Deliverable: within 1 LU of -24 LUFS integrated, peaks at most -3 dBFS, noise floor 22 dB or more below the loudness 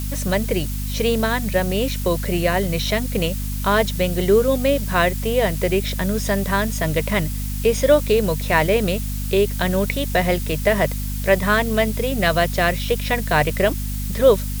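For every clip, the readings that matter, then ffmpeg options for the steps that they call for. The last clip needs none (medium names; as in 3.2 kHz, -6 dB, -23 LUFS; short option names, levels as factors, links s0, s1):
hum 50 Hz; highest harmonic 250 Hz; hum level -23 dBFS; noise floor -25 dBFS; noise floor target -42 dBFS; loudness -20.0 LUFS; peak level -3.0 dBFS; loudness target -24.0 LUFS
-> -af "bandreject=f=50:t=h:w=6,bandreject=f=100:t=h:w=6,bandreject=f=150:t=h:w=6,bandreject=f=200:t=h:w=6,bandreject=f=250:t=h:w=6"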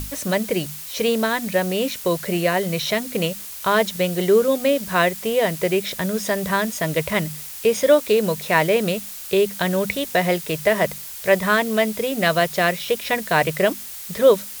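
hum not found; noise floor -35 dBFS; noise floor target -43 dBFS
-> -af "afftdn=nr=8:nf=-35"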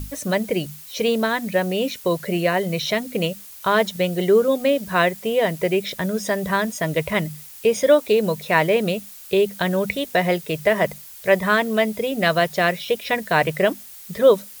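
noise floor -41 dBFS; noise floor target -43 dBFS
-> -af "afftdn=nr=6:nf=-41"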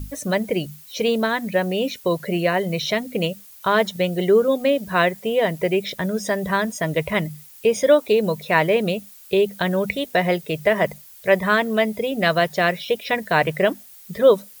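noise floor -45 dBFS; loudness -21.0 LUFS; peak level -3.0 dBFS; loudness target -24.0 LUFS
-> -af "volume=0.708"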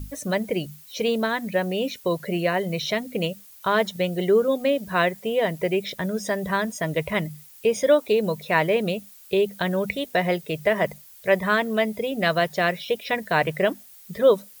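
loudness -24.0 LUFS; peak level -6.0 dBFS; noise floor -48 dBFS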